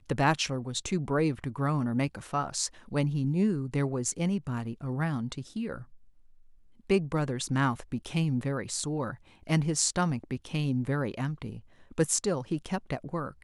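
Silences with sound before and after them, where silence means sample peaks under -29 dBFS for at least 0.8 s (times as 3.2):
5.74–6.9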